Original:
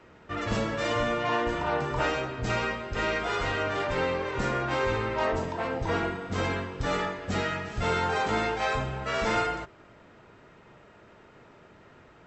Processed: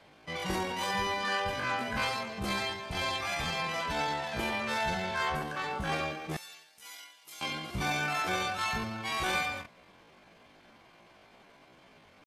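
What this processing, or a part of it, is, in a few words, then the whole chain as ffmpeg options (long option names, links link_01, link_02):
chipmunk voice: -filter_complex "[0:a]asettb=1/sr,asplit=3[link_01][link_02][link_03];[link_01]atrim=end=6.374[link_04];[link_02]atrim=start=6.37:end=7.44,asetpts=PTS-STARTPTS,afade=type=in:duration=0.004:curve=qsin,afade=type=out:start_time=1.066:duration=0.004:curve=qsin,aderivative[link_05];[link_03]atrim=start=7.436[link_06];[link_04][link_05]acrossfade=duration=0.004:curve1=hsin:curve2=qsin[link_07];[link_07][link_06]acrossfade=duration=0.004:curve1=qsin:curve2=hsin,asetrate=74167,aresample=44100,atempo=0.594604,volume=-4dB"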